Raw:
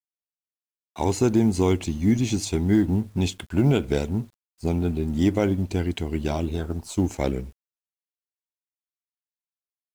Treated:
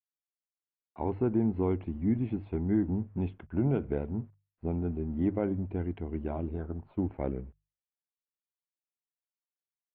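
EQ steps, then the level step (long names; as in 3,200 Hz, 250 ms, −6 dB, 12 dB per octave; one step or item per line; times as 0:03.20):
Gaussian smoothing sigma 4.7 samples
mains-hum notches 50/100/150 Hz
−7.5 dB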